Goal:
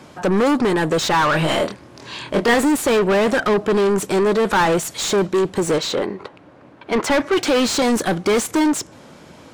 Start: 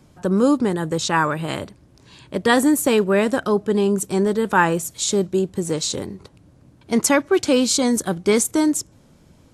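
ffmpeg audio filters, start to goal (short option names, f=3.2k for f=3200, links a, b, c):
-filter_complex "[0:a]asettb=1/sr,asplit=3[a][b][c];[a]atrim=end=5.784[d];[b]atrim=start=5.78:end=7.11,asetpts=PTS-STARTPTS,afade=t=in:d=0.004:c=qsin,afade=t=out:st=1.326:d=0.004:c=qsin,bass=f=250:g=-7,treble=f=4k:g=-14[e];[c]atrim=start=7.106[f];[d][e]acrossfade=d=0.004:c1=hsin:c2=qsin[g];[g][f]acrossfade=d=0.004:c1=qsin:c2=hsin,asplit=2[h][i];[i]highpass=f=720:p=1,volume=30dB,asoftclip=type=tanh:threshold=-3.5dB[j];[h][j]amix=inputs=2:normalize=0,lowpass=f=2.5k:p=1,volume=-6dB,asettb=1/sr,asplit=3[k][l][m];[k]atrim=end=1.314[n];[l]atrim=start=1.31:end=2.54,asetpts=PTS-STARTPTS,afade=t=in:d=0.004:c=qsin,afade=t=out:st=1.226:d=0.004:c=qsin,asplit=2[o][p];[p]adelay=25,volume=-4dB[q];[o][q]amix=inputs=2:normalize=0,atrim=end_sample=54243[r];[m]atrim=start=2.536[s];[n][r]acrossfade=d=0.004:c1=hsin:c2=qsin[t];[t][s]acrossfade=d=0.004:c1=qsin:c2=hsin,volume=-5.5dB"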